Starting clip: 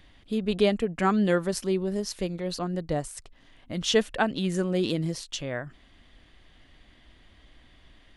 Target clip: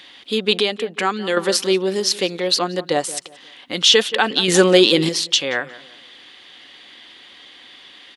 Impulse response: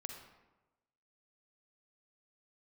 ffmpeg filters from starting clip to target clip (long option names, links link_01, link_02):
-filter_complex "[0:a]asplit=2[link_01][link_02];[link_02]adelay=177,lowpass=frequency=2100:poles=1,volume=-17dB,asplit=2[link_03][link_04];[link_04]adelay=177,lowpass=frequency=2100:poles=1,volume=0.34,asplit=2[link_05][link_06];[link_06]adelay=177,lowpass=frequency=2100:poles=1,volume=0.34[link_07];[link_01][link_03][link_05][link_07]amix=inputs=4:normalize=0,asettb=1/sr,asplit=3[link_08][link_09][link_10];[link_08]atrim=end=0.584[link_11];[link_09]atrim=start=0.58:end=1.37,asetpts=PTS-STARTPTS,afade=type=in:duration=0.004:curve=qsin,afade=type=out:start_time=0.786:duration=0.004:curve=qsin,acompressor=threshold=-33dB:ratio=2[link_12];[link_10]atrim=start=1.366[link_13];[link_11][link_12]acrossfade=duration=0.004:curve1=hsin:curve2=qsin[link_14];[link_14][link_13]acrossfade=duration=0.004:curve1=qsin:curve2=hsin,asuperstop=centerf=640:order=4:qfactor=6.7,asettb=1/sr,asplit=3[link_15][link_16][link_17];[link_15]atrim=end=4.484[link_18];[link_16]atrim=start=4.48:end=5.09,asetpts=PTS-STARTPTS,afade=type=in:duration=0.004:curve=qsin,afade=type=out:start_time=0.606:duration=0.004:curve=qsin,acontrast=87[link_19];[link_17]atrim=start=5.086[link_20];[link_18][link_19]acrossfade=duration=0.004:curve1=hsin:curve2=qsin[link_21];[link_21][link_20]acrossfade=duration=0.004:curve1=qsin:curve2=hsin,highpass=370,equalizer=frequency=3700:width_type=o:width=1.3:gain=9,alimiter=level_in=13dB:limit=-1dB:release=50:level=0:latency=1,volume=-1dB"